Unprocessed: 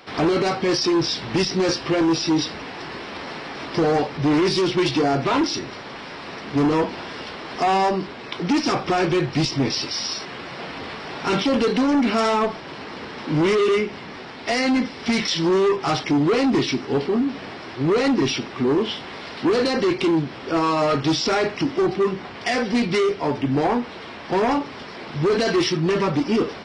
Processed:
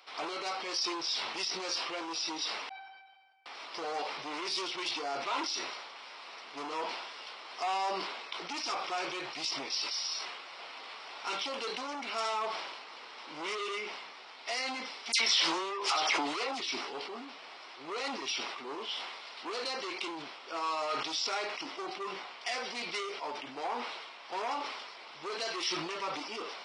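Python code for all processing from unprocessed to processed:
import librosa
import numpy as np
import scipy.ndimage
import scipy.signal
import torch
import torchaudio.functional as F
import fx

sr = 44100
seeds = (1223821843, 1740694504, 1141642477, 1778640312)

y = fx.chain(x, sr, fx.air_absorb(metres=420.0),
    fx.comb_fb(f0_hz=770.0, decay_s=0.4, harmonics='all', damping=0.0, mix_pct=100), at=(2.69, 3.46))
y = fx.chain(y, sr, fx.highpass(hz=280.0, slope=6),
    fx.dispersion(late='lows', ms=82.0, hz=2200.0),
    fx.env_flatten(amount_pct=100), at=(15.12, 16.6))
y = scipy.signal.sosfilt(scipy.signal.butter(2, 900.0, 'highpass', fs=sr, output='sos'), y)
y = fx.peak_eq(y, sr, hz=1700.0, db=-8.0, octaves=0.41)
y = fx.sustainer(y, sr, db_per_s=38.0)
y = F.gain(torch.from_numpy(y), -8.5).numpy()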